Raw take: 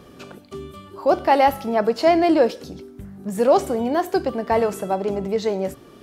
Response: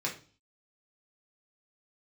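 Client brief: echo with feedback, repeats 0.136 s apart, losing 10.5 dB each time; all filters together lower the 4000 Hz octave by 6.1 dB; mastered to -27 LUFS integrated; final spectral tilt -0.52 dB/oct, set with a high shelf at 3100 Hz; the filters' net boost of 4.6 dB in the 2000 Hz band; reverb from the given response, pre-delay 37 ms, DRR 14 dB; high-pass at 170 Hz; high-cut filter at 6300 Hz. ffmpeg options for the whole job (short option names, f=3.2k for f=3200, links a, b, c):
-filter_complex "[0:a]highpass=170,lowpass=6.3k,equalizer=f=2k:t=o:g=9,highshelf=f=3.1k:g=-7.5,equalizer=f=4k:t=o:g=-6,aecho=1:1:136|272|408:0.299|0.0896|0.0269,asplit=2[a][b];[1:a]atrim=start_sample=2205,adelay=37[c];[b][c]afir=irnorm=-1:irlink=0,volume=-19dB[d];[a][d]amix=inputs=2:normalize=0,volume=-7.5dB"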